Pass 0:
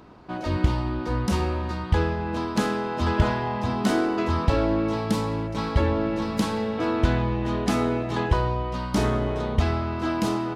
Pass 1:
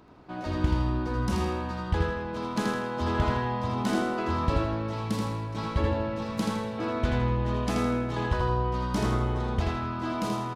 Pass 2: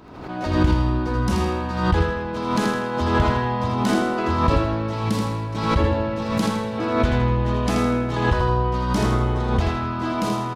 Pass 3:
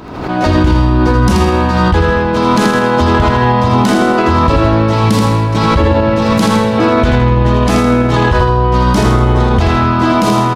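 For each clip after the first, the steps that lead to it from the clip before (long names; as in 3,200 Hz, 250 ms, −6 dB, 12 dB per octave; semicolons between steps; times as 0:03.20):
repeating echo 81 ms, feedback 40%, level −3.5 dB; level −6 dB
background raised ahead of every attack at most 56 dB per second; level +6 dB
boost into a limiter +15.5 dB; level −1 dB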